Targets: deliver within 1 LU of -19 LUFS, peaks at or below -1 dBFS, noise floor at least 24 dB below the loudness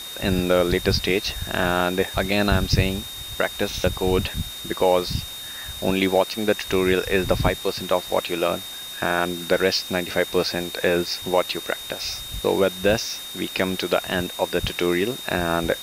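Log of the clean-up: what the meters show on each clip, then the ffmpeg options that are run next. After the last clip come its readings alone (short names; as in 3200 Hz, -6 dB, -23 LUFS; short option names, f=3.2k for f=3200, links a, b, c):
steady tone 3700 Hz; tone level -34 dBFS; noise floor -35 dBFS; noise floor target -47 dBFS; loudness -23.0 LUFS; peak -5.5 dBFS; loudness target -19.0 LUFS
-> -af "bandreject=f=3.7k:w=30"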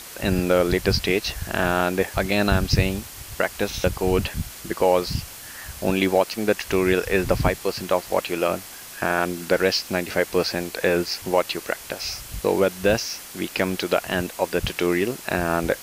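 steady tone none; noise floor -40 dBFS; noise floor target -48 dBFS
-> -af "afftdn=nr=8:nf=-40"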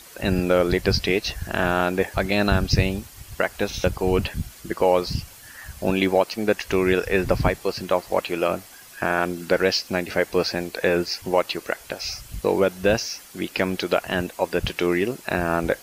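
noise floor -45 dBFS; noise floor target -48 dBFS
-> -af "afftdn=nr=6:nf=-45"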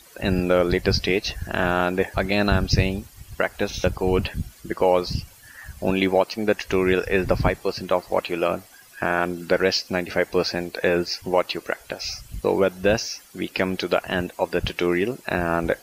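noise floor -49 dBFS; loudness -23.5 LUFS; peak -6.0 dBFS; loudness target -19.0 LUFS
-> -af "volume=4.5dB"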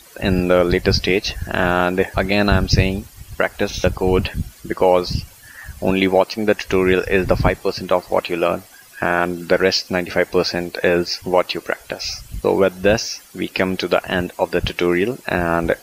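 loudness -19.0 LUFS; peak -1.5 dBFS; noise floor -45 dBFS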